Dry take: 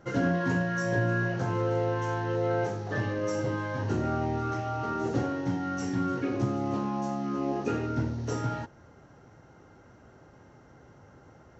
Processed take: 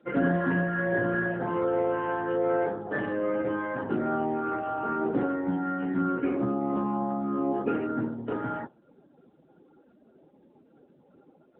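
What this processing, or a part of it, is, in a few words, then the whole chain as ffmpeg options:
mobile call with aggressive noise cancelling: -af "highpass=f=170:w=0.5412,highpass=f=170:w=1.3066,afftdn=nr=22:nf=-48,volume=1.41" -ar 8000 -c:a libopencore_amrnb -b:a 10200

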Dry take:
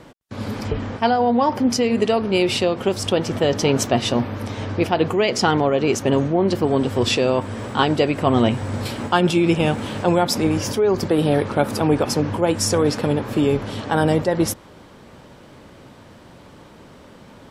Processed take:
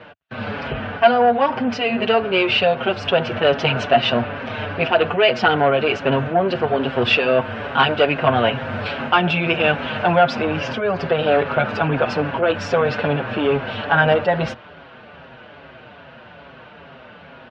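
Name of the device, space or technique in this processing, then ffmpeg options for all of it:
barber-pole flanger into a guitar amplifier: -filter_complex "[0:a]asplit=2[s0][s1];[s1]adelay=6.1,afreqshift=-2.4[s2];[s0][s2]amix=inputs=2:normalize=1,asoftclip=type=tanh:threshold=0.211,highpass=78,equalizer=f=100:t=q:w=4:g=-6,equalizer=f=200:t=q:w=4:g=-5,equalizer=f=320:t=q:w=4:g=-9,equalizer=f=670:t=q:w=4:g=7,equalizer=f=1500:t=q:w=4:g=10,equalizer=f=2700:t=q:w=4:g=9,lowpass=f=3700:w=0.5412,lowpass=f=3700:w=1.3066,volume=1.78"

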